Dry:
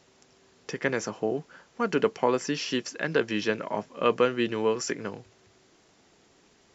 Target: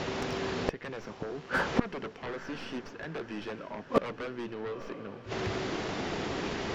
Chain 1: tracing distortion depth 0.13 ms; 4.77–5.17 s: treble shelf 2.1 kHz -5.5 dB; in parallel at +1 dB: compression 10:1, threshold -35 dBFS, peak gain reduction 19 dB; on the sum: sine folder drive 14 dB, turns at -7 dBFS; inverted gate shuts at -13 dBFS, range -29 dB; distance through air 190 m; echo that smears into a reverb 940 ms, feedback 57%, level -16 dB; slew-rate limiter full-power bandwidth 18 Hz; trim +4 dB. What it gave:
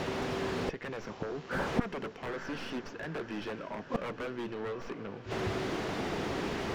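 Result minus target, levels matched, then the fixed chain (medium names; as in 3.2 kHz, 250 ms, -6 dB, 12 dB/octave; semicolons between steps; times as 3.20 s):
compression: peak gain reduction -7 dB; slew-rate limiter: distortion +6 dB
tracing distortion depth 0.13 ms; 4.77–5.17 s: treble shelf 2.1 kHz -5.5 dB; in parallel at +1 dB: compression 10:1, threshold -43 dBFS, peak gain reduction 26 dB; on the sum: sine folder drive 14 dB, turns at -7 dBFS; inverted gate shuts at -13 dBFS, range -29 dB; distance through air 190 m; echo that smears into a reverb 940 ms, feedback 57%, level -16 dB; slew-rate limiter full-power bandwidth 55 Hz; trim +4 dB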